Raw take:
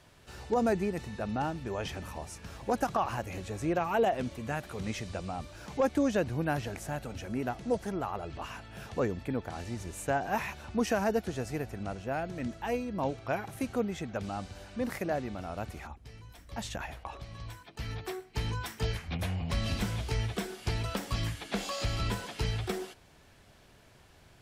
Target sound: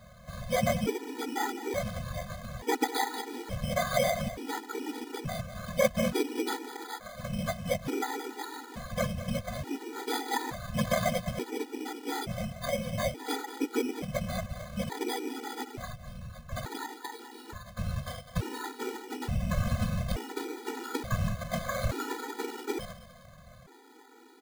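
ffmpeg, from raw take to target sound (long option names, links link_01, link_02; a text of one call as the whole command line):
ffmpeg -i in.wav -filter_complex "[0:a]asettb=1/sr,asplit=3[link_01][link_02][link_03];[link_01]atrim=end=6.564[link_04];[link_02]atrim=start=6.56:end=7.24,asetpts=PTS-STARTPTS,afade=type=in:duration=0.004:curve=qsin,afade=type=out:start_time=0.676:duration=0.004:curve=qsin,highpass=820[link_05];[link_03]atrim=start=7.236[link_06];[link_04][link_05]acrossfade=duration=0.004:curve1=hsin:curve2=qsin[link_07];[link_07][link_06]acrossfade=duration=0.004:curve1=qsin:curve2=hsin,asplit=2[link_08][link_09];[link_09]acompressor=threshold=-41dB:ratio=6,volume=2dB[link_10];[link_08][link_10]amix=inputs=2:normalize=0,afftfilt=real='hypot(re,im)*cos(2*PI*random(0))':imag='hypot(re,im)*sin(2*PI*random(1))':win_size=512:overlap=0.75,aecho=1:1:203|406|609:0.224|0.0627|0.0176,acrusher=samples=16:mix=1:aa=0.000001,afftfilt=real='re*gt(sin(2*PI*0.57*pts/sr)*(1-2*mod(floor(b*sr/1024/250),2)),0)':imag='im*gt(sin(2*PI*0.57*pts/sr)*(1-2*mod(floor(b*sr/1024/250),2)),0)':win_size=1024:overlap=0.75,volume=7dB" out.wav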